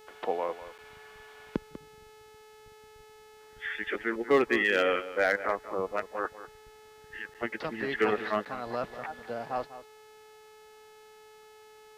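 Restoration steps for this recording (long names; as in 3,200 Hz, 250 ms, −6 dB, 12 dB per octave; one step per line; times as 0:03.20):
clipped peaks rebuilt −16.5 dBFS
hum removal 430.6 Hz, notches 36
repair the gap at 0:00.78/0:07.34/0:08.45, 7.5 ms
echo removal 195 ms −14 dB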